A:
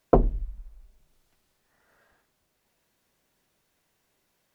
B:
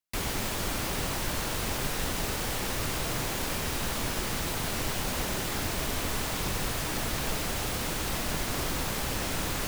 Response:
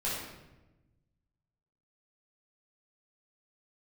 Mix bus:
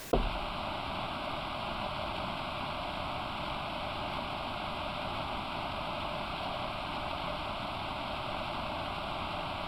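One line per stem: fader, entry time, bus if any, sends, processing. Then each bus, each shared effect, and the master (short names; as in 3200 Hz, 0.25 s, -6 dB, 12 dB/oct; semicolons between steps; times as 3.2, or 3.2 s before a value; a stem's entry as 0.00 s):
-11.0 dB, 0.00 s, no send, dry
+2.5 dB, 0.00 s, no send, ring modulator 600 Hz; LPF 3300 Hz 12 dB/oct; fixed phaser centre 1800 Hz, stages 6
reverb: off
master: backwards sustainer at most 28 dB/s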